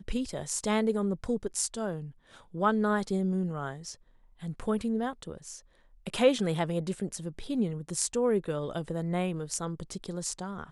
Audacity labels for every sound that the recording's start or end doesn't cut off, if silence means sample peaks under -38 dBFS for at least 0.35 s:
2.540000	3.930000	sound
4.430000	5.570000	sound